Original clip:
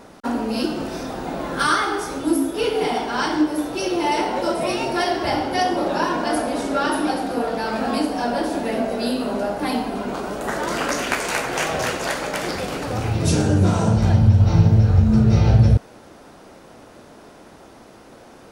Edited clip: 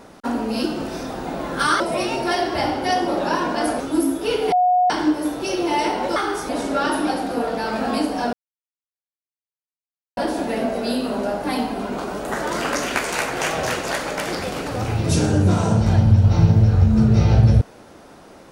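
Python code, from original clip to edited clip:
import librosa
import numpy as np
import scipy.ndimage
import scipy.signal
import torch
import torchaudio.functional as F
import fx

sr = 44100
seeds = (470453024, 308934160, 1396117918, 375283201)

y = fx.edit(x, sr, fx.swap(start_s=1.8, length_s=0.33, other_s=4.49, other_length_s=2.0),
    fx.bleep(start_s=2.85, length_s=0.38, hz=726.0, db=-13.0),
    fx.insert_silence(at_s=8.33, length_s=1.84), tone=tone)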